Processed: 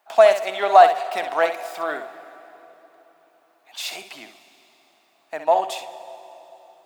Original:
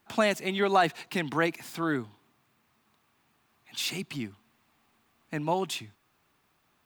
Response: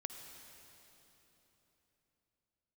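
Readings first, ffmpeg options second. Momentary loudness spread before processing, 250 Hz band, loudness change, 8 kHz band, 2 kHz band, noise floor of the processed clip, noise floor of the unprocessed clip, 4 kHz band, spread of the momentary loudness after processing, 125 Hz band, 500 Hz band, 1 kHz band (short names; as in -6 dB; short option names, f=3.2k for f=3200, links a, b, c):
13 LU, -9.5 dB, +10.0 dB, +1.5 dB, +4.0 dB, -62 dBFS, -71 dBFS, +2.5 dB, 21 LU, under -20 dB, +12.0 dB, +12.5 dB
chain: -filter_complex "[0:a]aeval=exprs='0.299*(cos(1*acos(clip(val(0)/0.299,-1,1)))-cos(1*PI/2))+0.00944*(cos(7*acos(clip(val(0)/0.299,-1,1)))-cos(7*PI/2))':c=same,highpass=f=660:t=q:w=4.9,asplit=2[a][b];[1:a]atrim=start_sample=2205,adelay=64[c];[b][c]afir=irnorm=-1:irlink=0,volume=-5.5dB[d];[a][d]amix=inputs=2:normalize=0,volume=2.5dB"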